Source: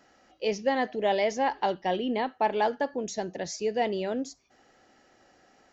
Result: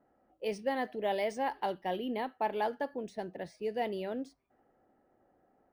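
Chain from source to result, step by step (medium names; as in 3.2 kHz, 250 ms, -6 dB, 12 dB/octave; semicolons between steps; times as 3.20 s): level-controlled noise filter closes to 850 Hz, open at -23 dBFS; decimation joined by straight lines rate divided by 3×; trim -6.5 dB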